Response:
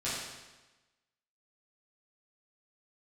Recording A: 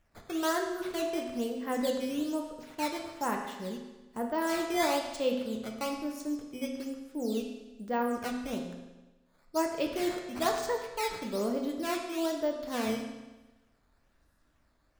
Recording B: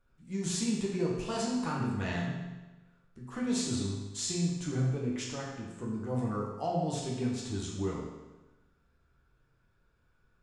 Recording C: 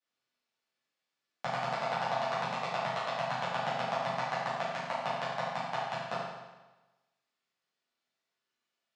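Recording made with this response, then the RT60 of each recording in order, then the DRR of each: C; 1.1, 1.1, 1.1 s; 1.5, -4.0, -11.0 dB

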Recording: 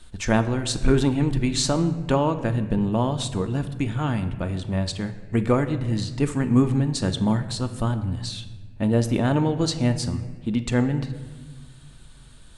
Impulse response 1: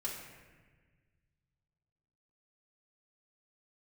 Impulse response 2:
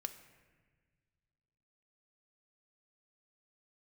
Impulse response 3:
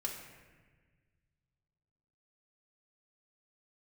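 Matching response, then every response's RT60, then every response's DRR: 2; 1.4, 1.5, 1.4 s; -6.5, 7.0, -2.5 dB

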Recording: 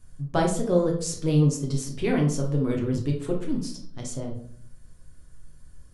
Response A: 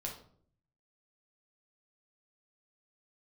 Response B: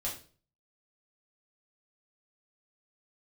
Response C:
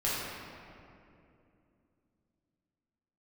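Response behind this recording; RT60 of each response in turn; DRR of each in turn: A; 0.55, 0.40, 2.7 s; -1.0, -5.5, -8.5 dB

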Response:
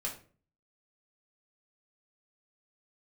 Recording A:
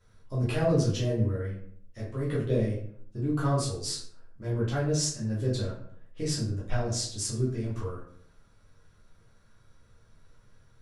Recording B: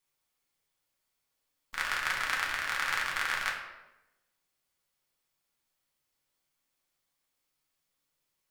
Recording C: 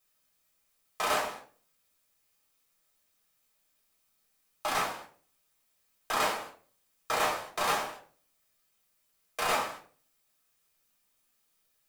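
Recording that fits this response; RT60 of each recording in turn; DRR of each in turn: C; 0.60, 1.0, 0.40 s; -7.5, -3.0, -2.5 dB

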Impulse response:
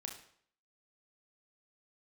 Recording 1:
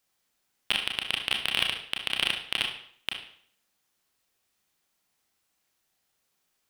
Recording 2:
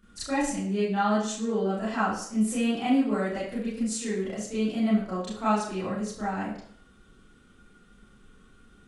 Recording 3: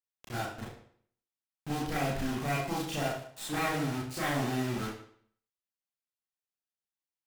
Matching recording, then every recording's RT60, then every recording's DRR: 1; 0.60, 0.60, 0.60 s; 2.0, -11.5, -6.5 dB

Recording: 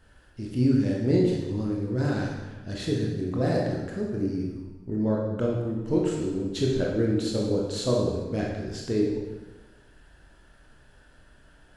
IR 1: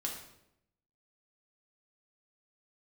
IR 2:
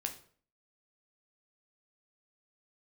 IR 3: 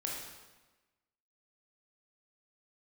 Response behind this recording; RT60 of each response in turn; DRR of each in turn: 3; 0.80, 0.50, 1.2 s; -1.0, 3.5, -2.5 dB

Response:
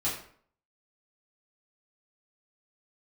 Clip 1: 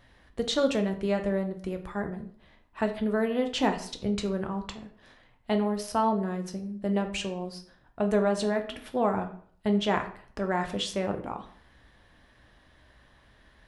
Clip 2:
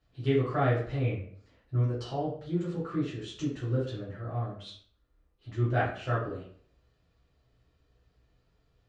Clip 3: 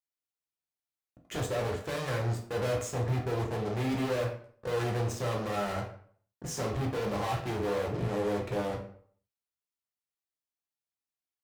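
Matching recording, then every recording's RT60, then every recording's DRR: 2; 0.55, 0.55, 0.55 s; 5.0, -9.0, -0.5 dB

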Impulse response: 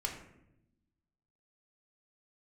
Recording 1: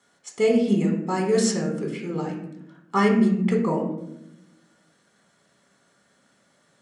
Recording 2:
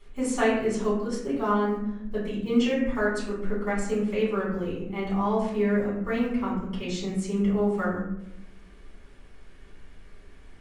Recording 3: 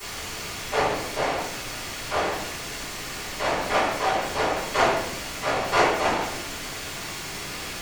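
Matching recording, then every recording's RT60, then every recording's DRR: 1; 0.85, 0.85, 0.85 s; -0.5, -8.5, -17.0 dB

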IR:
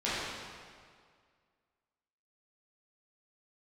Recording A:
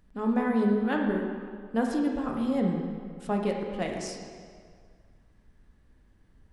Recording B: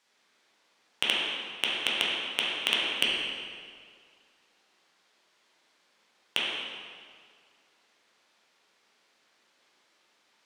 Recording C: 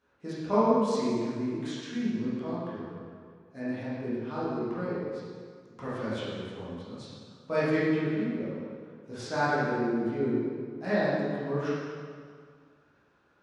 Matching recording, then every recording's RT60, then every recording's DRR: C; 2.0, 2.0, 2.0 s; 0.5, -6.0, -11.5 dB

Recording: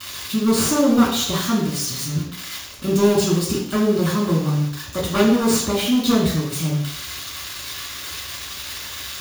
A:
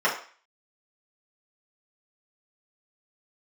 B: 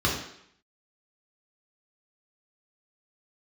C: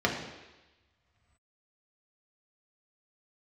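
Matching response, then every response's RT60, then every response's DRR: B; 0.40, 0.70, 1.1 s; -8.5, -3.5, -1.5 dB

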